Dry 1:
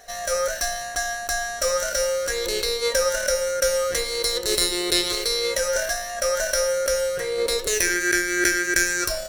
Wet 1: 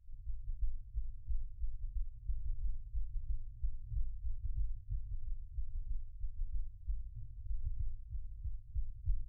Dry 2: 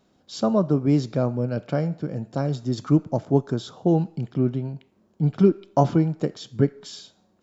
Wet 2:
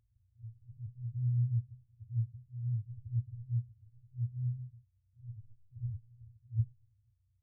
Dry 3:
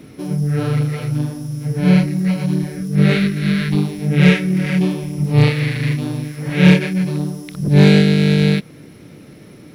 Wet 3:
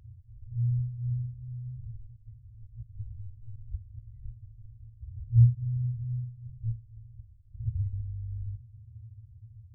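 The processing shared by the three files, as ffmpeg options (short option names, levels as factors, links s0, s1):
-af "afftfilt=real='re*(1-between(b*sr/4096,120,2300))':imag='im*(1-between(b*sr/4096,120,2300))':win_size=4096:overlap=0.75,afftfilt=real='re*lt(b*sr/1024,270*pow(2100/270,0.5+0.5*sin(2*PI*0.54*pts/sr)))':imag='im*lt(b*sr/1024,270*pow(2100/270,0.5+0.5*sin(2*PI*0.54*pts/sr)))':win_size=1024:overlap=0.75,volume=1.41"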